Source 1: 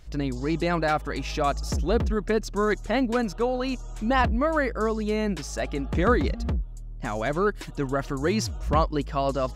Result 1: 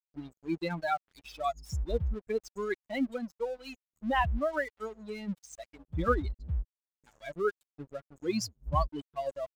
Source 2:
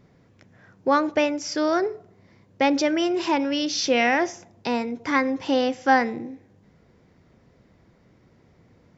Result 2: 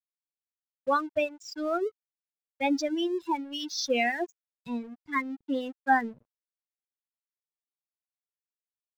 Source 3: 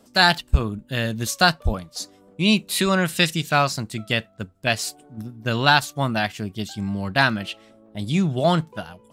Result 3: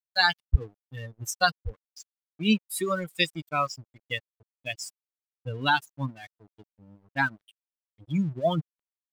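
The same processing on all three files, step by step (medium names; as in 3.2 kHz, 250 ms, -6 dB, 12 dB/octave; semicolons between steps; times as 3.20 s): expander on every frequency bin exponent 3; crossover distortion -50.5 dBFS; trim -1 dB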